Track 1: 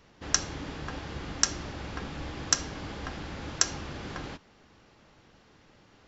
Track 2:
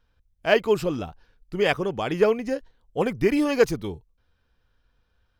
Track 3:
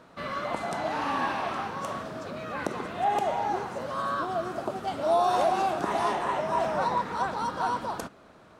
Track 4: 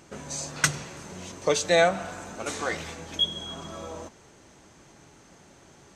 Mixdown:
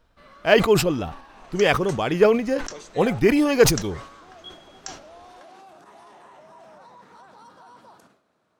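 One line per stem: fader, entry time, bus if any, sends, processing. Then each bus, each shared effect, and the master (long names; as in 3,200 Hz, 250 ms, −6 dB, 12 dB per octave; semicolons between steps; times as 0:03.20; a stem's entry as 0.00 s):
−13.0 dB, 1.25 s, no send, high-pass filter 300 Hz 24 dB per octave
+3.0 dB, 0.00 s, no send, no processing
−16.0 dB, 0.00 s, no send, brickwall limiter −24.5 dBFS, peak gain reduction 10.5 dB; high-pass filter 100 Hz; bass and treble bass −1 dB, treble +4 dB
−18.5 dB, 1.25 s, no send, no processing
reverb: not used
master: level that may fall only so fast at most 100 dB per second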